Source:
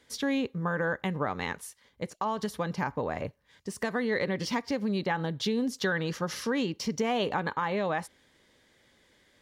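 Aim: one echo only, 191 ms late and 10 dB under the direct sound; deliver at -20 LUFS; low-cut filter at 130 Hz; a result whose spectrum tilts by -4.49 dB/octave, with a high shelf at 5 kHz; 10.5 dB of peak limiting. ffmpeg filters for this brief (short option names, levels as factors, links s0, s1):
-af "highpass=130,highshelf=f=5000:g=-8.5,alimiter=level_in=1.26:limit=0.0631:level=0:latency=1,volume=0.794,aecho=1:1:191:0.316,volume=5.96"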